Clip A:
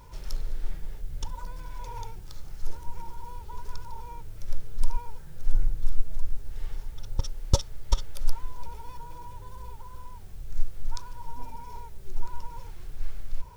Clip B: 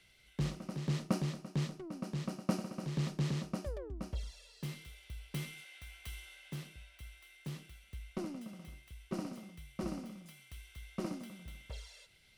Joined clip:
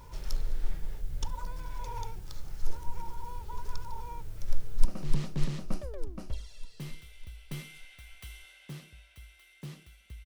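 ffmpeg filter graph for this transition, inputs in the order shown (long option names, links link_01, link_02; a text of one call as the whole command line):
ffmpeg -i cue0.wav -i cue1.wav -filter_complex "[0:a]apad=whole_dur=10.25,atrim=end=10.25,atrim=end=4.852[link_01];[1:a]atrim=start=2.678:end=8.08[link_02];[link_01][link_02]acrossfade=duration=0.004:curve1=hsin:curve2=hsin,asplit=2[link_03][link_04];[link_04]afade=type=in:start_time=4.49:duration=0.01,afade=type=out:start_time=4.85:duration=0.01,aecho=0:1:300|600|900|1200|1500|1800|2100|2400|2700|3000|3300|3600:0.562341|0.393639|0.275547|0.192883|0.135018|0.0945127|0.0661589|0.0463112|0.0324179|0.0226925|0.0158848|0.0111193[link_05];[link_03][link_05]amix=inputs=2:normalize=0" out.wav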